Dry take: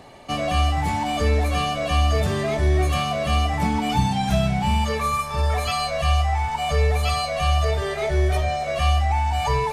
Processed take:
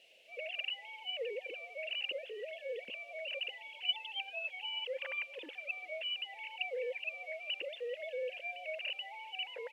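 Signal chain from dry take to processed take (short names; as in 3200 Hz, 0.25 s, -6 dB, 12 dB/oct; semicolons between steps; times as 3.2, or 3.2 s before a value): sine-wave speech; bell 750 Hz -14.5 dB 0.97 oct; requantised 8-bit, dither triangular; double band-pass 1200 Hz, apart 2.4 oct; frequency-shifting echo 0.393 s, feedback 34%, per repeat +34 Hz, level -21.5 dB; gain -1.5 dB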